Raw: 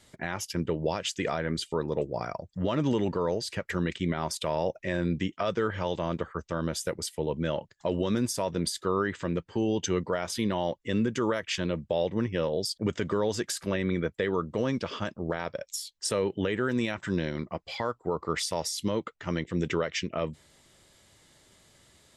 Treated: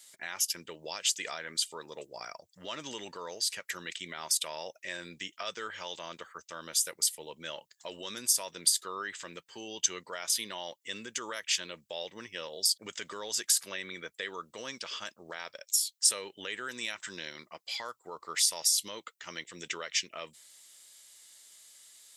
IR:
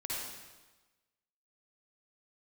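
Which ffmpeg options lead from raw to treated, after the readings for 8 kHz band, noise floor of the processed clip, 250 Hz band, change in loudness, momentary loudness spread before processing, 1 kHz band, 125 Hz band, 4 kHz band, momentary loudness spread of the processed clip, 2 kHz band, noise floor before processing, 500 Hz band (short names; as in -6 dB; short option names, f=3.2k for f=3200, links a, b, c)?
+8.5 dB, -73 dBFS, -20.0 dB, -2.0 dB, 5 LU, -8.0 dB, -25.0 dB, +4.0 dB, 16 LU, -3.0 dB, -63 dBFS, -14.5 dB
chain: -af "aderivative,volume=8.5dB"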